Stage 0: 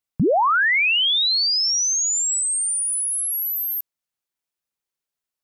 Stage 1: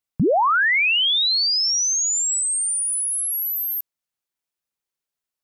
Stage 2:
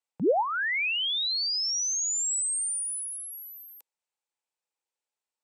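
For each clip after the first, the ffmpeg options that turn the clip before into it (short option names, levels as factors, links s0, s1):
-af anull
-filter_complex "[0:a]highpass=290,equalizer=f=500:t=q:w=4:g=7,equalizer=f=860:t=q:w=4:g=10,equalizer=f=2500:t=q:w=4:g=4,equalizer=f=8000:t=q:w=4:g=5,lowpass=f=9100:w=0.5412,lowpass=f=9100:w=1.3066,acrossover=split=420[s0][s1];[s1]acompressor=threshold=0.0794:ratio=6[s2];[s0][s2]amix=inputs=2:normalize=0,volume=0.562"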